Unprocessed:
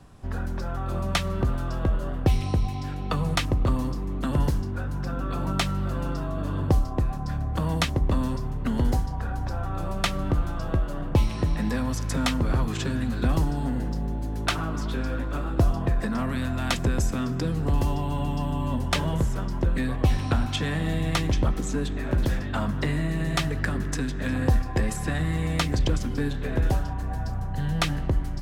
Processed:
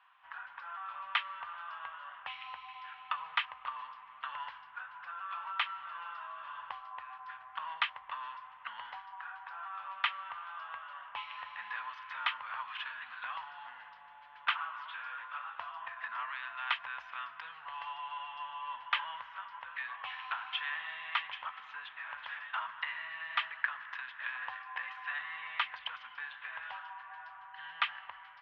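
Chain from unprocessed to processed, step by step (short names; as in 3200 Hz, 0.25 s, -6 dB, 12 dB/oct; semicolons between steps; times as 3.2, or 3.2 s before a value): elliptic band-pass 970–3100 Hz, stop band 50 dB; gain -2 dB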